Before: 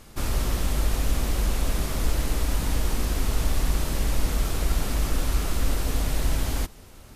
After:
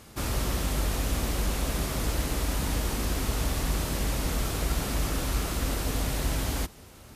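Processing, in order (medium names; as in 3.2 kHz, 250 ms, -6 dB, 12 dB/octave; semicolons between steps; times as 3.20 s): high-pass 55 Hz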